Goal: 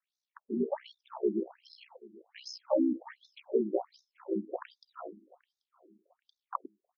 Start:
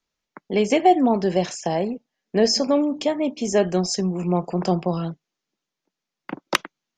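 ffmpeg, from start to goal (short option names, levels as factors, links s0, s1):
-filter_complex "[0:a]acrossover=split=1600[s0][s1];[s1]acompressor=threshold=0.00891:ratio=5[s2];[s0][s2]amix=inputs=2:normalize=0,aeval=exprs='val(0)*sin(2*PI*31*n/s)':c=same,asplit=2[s3][s4];[s4]adelay=785,lowpass=f=3100:p=1,volume=0.075,asplit=2[s5][s6];[s6]adelay=785,lowpass=f=3100:p=1,volume=0.39,asplit=2[s7][s8];[s8]adelay=785,lowpass=f=3100:p=1,volume=0.39[s9];[s3][s5][s7][s9]amix=inputs=4:normalize=0,afftfilt=real='re*between(b*sr/1024,260*pow(5000/260,0.5+0.5*sin(2*PI*1.3*pts/sr))/1.41,260*pow(5000/260,0.5+0.5*sin(2*PI*1.3*pts/sr))*1.41)':imag='im*between(b*sr/1024,260*pow(5000/260,0.5+0.5*sin(2*PI*1.3*pts/sr))/1.41,260*pow(5000/260,0.5+0.5*sin(2*PI*1.3*pts/sr))*1.41)':win_size=1024:overlap=0.75,volume=0.794"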